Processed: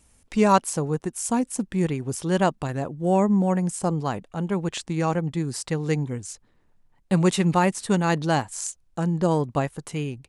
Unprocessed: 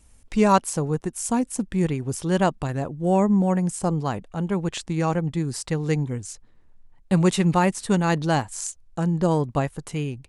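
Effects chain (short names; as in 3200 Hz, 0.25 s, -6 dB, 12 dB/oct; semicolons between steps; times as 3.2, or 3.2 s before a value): low shelf 61 Hz -11.5 dB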